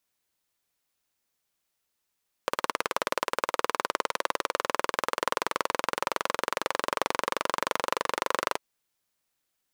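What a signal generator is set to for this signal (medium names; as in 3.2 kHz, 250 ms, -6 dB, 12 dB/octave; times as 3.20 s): single-cylinder engine model, changing speed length 6.10 s, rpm 2200, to 2900, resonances 540/1000 Hz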